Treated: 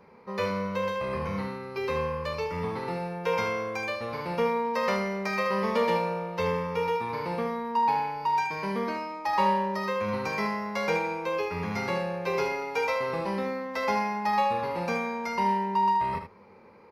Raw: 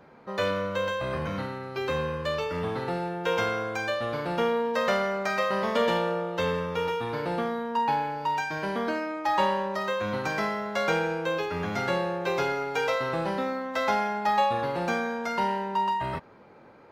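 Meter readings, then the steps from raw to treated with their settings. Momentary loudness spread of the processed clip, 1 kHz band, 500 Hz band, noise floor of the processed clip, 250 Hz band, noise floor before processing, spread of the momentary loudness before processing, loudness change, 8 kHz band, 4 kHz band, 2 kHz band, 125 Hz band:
6 LU, +0.5 dB, -1.5 dB, -52 dBFS, -0.5 dB, -52 dBFS, 5 LU, -0.5 dB, -2.0 dB, -4.0 dB, -2.0 dB, -1.0 dB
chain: ripple EQ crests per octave 0.86, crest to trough 9 dB; echo 76 ms -8 dB; gain -3 dB

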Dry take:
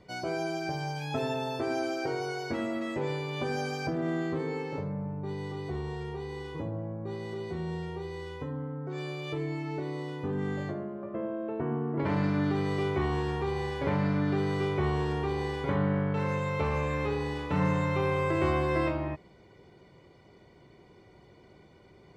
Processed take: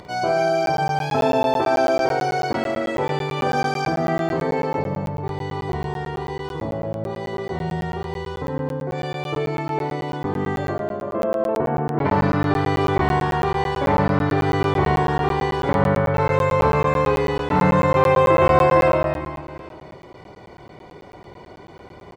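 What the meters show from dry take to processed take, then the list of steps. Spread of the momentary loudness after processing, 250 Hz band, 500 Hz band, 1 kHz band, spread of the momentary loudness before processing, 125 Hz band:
12 LU, +7.0 dB, +12.0 dB, +15.0 dB, 9 LU, +7.5 dB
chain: upward compressor, threshold -45 dBFS; bell 870 Hz +7.5 dB 1.5 oct; reverse bouncing-ball echo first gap 50 ms, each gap 1.6×, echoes 5; crackling interface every 0.11 s, samples 512, zero, from 0.66; gain +6 dB

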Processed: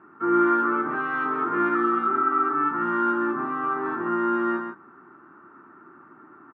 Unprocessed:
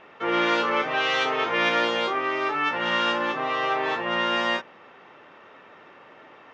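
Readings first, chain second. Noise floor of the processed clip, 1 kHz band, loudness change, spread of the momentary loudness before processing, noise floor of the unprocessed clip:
-51 dBFS, +1.5 dB, 0.0 dB, 4 LU, -50 dBFS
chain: EQ curve 140 Hz 0 dB, 350 Hz +7 dB, 510 Hz -19 dB, 1400 Hz +5 dB, 2000 Hz -16 dB, 3200 Hz -28 dB; outdoor echo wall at 23 m, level -6 dB; spectral repair 1.77–2.52, 540–1500 Hz after; HPF 89 Hz; high shelf 6100 Hz -10.5 dB

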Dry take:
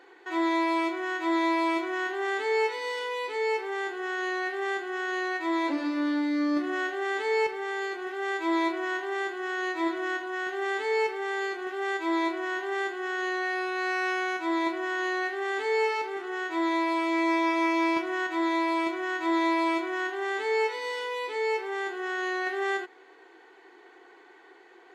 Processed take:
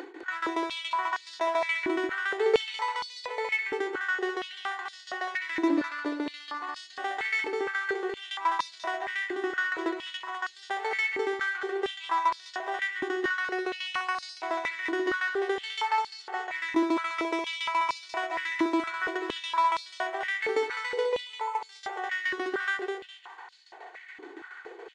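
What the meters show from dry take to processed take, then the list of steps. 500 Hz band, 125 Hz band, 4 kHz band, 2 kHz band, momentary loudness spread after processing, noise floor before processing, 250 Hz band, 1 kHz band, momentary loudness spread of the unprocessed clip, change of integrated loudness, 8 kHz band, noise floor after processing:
-3.0 dB, n/a, +2.0 dB, -0.5 dB, 9 LU, -54 dBFS, -5.0 dB, -0.5 dB, 6 LU, -1.5 dB, -0.5 dB, -50 dBFS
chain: spectral gain 21.26–21.62, 1500–6100 Hz -13 dB; upward compressor, threshold -37 dBFS; hard clip -24 dBFS, distortion -14 dB; tremolo saw down 7.1 Hz, depth 90%; on a send: feedback echo 0.205 s, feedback 37%, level -5.5 dB; on the sum: downsampling 22050 Hz; stepped high-pass 4.3 Hz 300–4500 Hz

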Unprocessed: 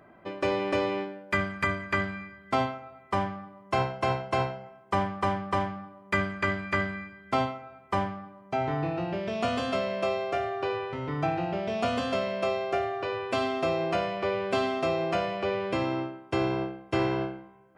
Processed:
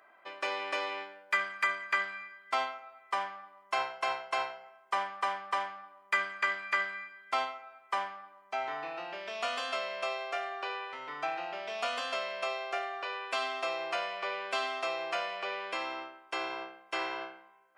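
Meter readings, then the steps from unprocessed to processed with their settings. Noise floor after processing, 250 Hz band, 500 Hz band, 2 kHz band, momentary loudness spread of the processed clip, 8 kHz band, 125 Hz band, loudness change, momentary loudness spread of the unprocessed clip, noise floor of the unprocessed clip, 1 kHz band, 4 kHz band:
-61 dBFS, -21.0 dB, -9.5 dB, -0.5 dB, 9 LU, 0.0 dB, under -30 dB, -5.0 dB, 6 LU, -54 dBFS, -3.5 dB, 0.0 dB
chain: HPF 960 Hz 12 dB/oct

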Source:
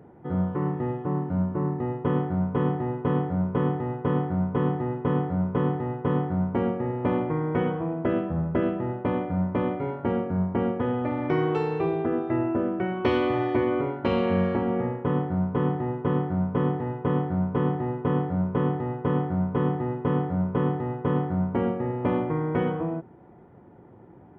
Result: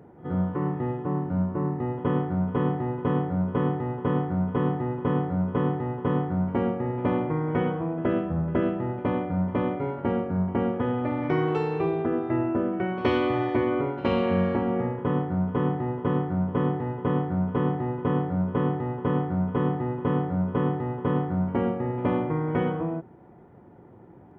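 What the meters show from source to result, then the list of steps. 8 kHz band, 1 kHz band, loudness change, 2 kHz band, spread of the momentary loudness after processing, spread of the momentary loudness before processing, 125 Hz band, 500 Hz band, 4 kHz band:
n/a, 0.0 dB, 0.0 dB, +0.5 dB, 3 LU, 3 LU, -0.5 dB, -0.5 dB, +0.5 dB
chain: reverse echo 72 ms -17.5 dB

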